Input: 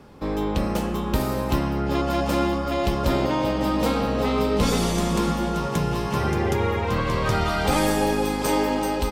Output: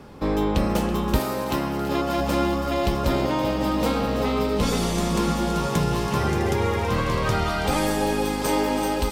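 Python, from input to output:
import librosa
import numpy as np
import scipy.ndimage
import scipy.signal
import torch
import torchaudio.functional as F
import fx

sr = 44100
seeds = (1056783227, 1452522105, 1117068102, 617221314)

y = fx.echo_wet_highpass(x, sr, ms=328, feedback_pct=84, hz=2900.0, wet_db=-11.5)
y = fx.rider(y, sr, range_db=4, speed_s=0.5)
y = fx.highpass(y, sr, hz=fx.line((1.18, 360.0), (2.18, 120.0)), slope=6, at=(1.18, 2.18), fade=0.02)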